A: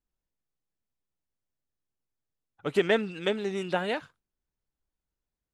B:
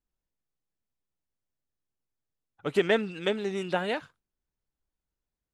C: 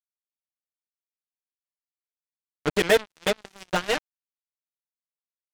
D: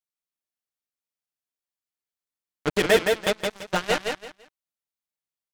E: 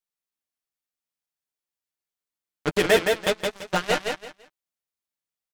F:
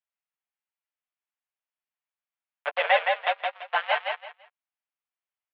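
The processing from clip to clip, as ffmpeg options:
-af anull
-af "aecho=1:1:6.4:0.87,acrusher=bits=3:mix=0:aa=0.5,volume=2.5dB"
-af "aecho=1:1:168|336|504:0.631|0.151|0.0363"
-filter_complex "[0:a]asplit=2[a][b];[b]adelay=12,volume=-11dB[c];[a][c]amix=inputs=2:normalize=0"
-af "highpass=f=480:t=q:w=0.5412,highpass=f=480:t=q:w=1.307,lowpass=f=3k:t=q:w=0.5176,lowpass=f=3k:t=q:w=0.7071,lowpass=f=3k:t=q:w=1.932,afreqshift=130"

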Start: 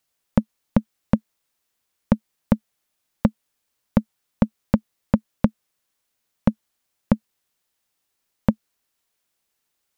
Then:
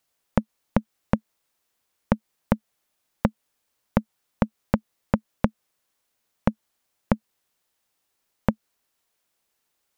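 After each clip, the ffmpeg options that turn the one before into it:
-af "equalizer=f=680:t=o:w=2.3:g=3,acompressor=threshold=-16dB:ratio=6"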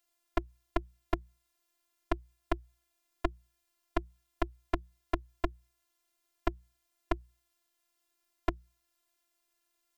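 -filter_complex "[0:a]acrossover=split=170[a][b];[b]acompressor=threshold=-24dB:ratio=6[c];[a][c]amix=inputs=2:normalize=0,afftfilt=real='hypot(re,im)*cos(PI*b)':imag='0':win_size=512:overlap=0.75,bandreject=f=60:t=h:w=6,bandreject=f=120:t=h:w=6,bandreject=f=180:t=h:w=6"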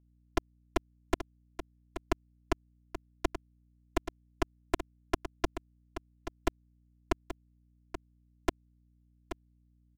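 -af "acrusher=bits=3:mix=0:aa=0.5,aecho=1:1:830:0.299,aeval=exprs='val(0)+0.000562*(sin(2*PI*60*n/s)+sin(2*PI*2*60*n/s)/2+sin(2*PI*3*60*n/s)/3+sin(2*PI*4*60*n/s)/4+sin(2*PI*5*60*n/s)/5)':c=same"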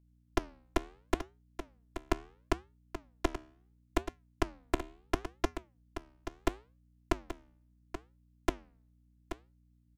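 -af "flanger=delay=6:depth=8.4:regen=-84:speed=0.73:shape=sinusoidal,volume=4.5dB"

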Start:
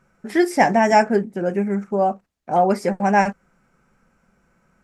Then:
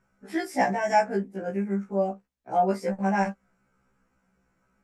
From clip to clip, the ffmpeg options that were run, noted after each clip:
-af "afftfilt=real='re*1.73*eq(mod(b,3),0)':imag='im*1.73*eq(mod(b,3),0)':win_size=2048:overlap=0.75,volume=-6dB"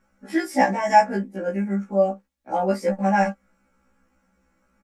-af "aecho=1:1:3.6:0.7,volume=3dB"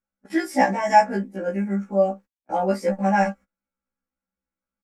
-af "agate=range=-25dB:threshold=-40dB:ratio=16:detection=peak"

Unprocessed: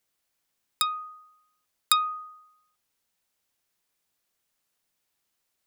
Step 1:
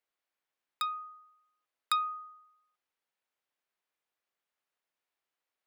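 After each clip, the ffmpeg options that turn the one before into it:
-af "bass=f=250:g=-14,treble=f=4k:g=-13,volume=-5dB"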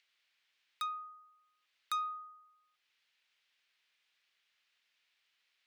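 -filter_complex "[0:a]acrossover=split=2000|4800[a][b][c];[b]acompressor=mode=upward:threshold=-58dB:ratio=2.5[d];[a][d][c]amix=inputs=3:normalize=0,asoftclip=type=tanh:threshold=-27dB,volume=-2.5dB"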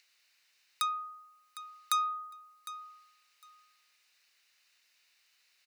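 -af "bass=f=250:g=-4,treble=f=4k:g=9,bandreject=f=3.3k:w=5.6,aecho=1:1:756|1512:0.188|0.0339,volume=5.5dB"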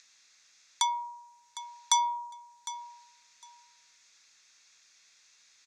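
-af "lowpass=f=6.8k:t=q:w=5,afreqshift=-290,volume=3dB"

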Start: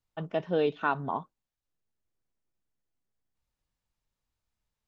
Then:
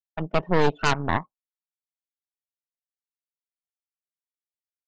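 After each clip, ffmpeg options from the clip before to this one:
-af "afftdn=nr=24:nf=-44,aeval=exprs='0.188*(cos(1*acos(clip(val(0)/0.188,-1,1)))-cos(1*PI/2))+0.0596*(cos(6*acos(clip(val(0)/0.188,-1,1)))-cos(6*PI/2))':c=same,agate=range=-33dB:threshold=-42dB:ratio=3:detection=peak,volume=4dB"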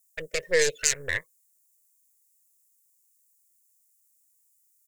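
-af "aexciter=amount=9.1:drive=7:freq=2k,alimiter=limit=-3.5dB:level=0:latency=1:release=37,firequalizer=gain_entry='entry(100,0);entry(220,-21);entry(500,13);entry(750,-19);entry(1700,5);entry(3000,-13);entry(7200,13)':delay=0.05:min_phase=1,volume=-7.5dB"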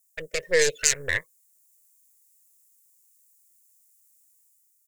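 -af "dynaudnorm=f=160:g=7:m=5dB"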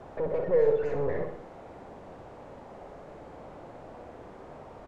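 -af "aeval=exprs='val(0)+0.5*0.141*sgn(val(0))':c=same,lowpass=f=650:t=q:w=1.5,aecho=1:1:61|122|183|244|305|366|427:0.447|0.246|0.135|0.0743|0.0409|0.0225|0.0124,volume=-8.5dB"

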